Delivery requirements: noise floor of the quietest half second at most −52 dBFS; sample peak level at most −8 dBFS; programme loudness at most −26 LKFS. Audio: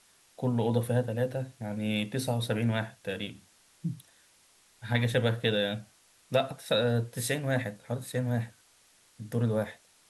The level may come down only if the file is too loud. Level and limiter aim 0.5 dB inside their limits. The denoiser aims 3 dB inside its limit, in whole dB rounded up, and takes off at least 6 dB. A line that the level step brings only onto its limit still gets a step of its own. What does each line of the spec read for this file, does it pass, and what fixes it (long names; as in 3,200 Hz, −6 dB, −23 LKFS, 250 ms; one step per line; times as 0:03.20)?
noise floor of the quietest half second −63 dBFS: in spec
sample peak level −11.5 dBFS: in spec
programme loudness −31.0 LKFS: in spec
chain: no processing needed